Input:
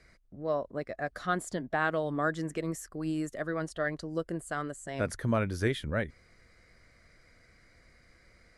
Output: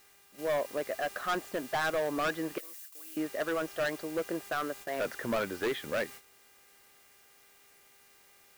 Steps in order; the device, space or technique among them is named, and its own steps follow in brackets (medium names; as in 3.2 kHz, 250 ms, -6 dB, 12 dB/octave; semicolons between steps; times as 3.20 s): aircraft radio (band-pass 380–2300 Hz; hard clipper -32 dBFS, distortion -6 dB; mains buzz 400 Hz, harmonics 7, -62 dBFS 0 dB/octave; white noise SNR 15 dB; gate -51 dBFS, range -12 dB); 2.58–3.17 s: differentiator; trim +5.5 dB